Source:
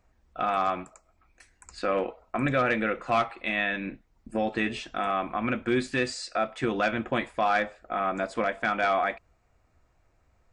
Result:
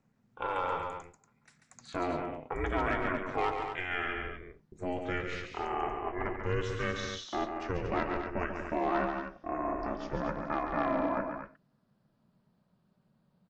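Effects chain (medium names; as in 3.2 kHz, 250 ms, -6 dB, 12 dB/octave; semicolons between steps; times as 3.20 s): gliding tape speed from 97% -> 59%; ring modulator 180 Hz; loudspeakers at several distances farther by 48 m -6 dB, 81 m -8 dB; trim -4 dB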